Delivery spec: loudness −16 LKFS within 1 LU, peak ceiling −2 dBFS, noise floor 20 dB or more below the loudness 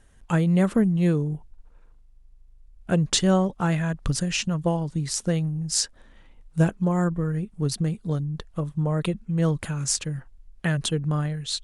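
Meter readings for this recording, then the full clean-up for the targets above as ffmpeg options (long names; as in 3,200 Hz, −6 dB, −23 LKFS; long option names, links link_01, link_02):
integrated loudness −25.0 LKFS; sample peak −8.5 dBFS; target loudness −16.0 LKFS
→ -af "volume=9dB,alimiter=limit=-2dB:level=0:latency=1"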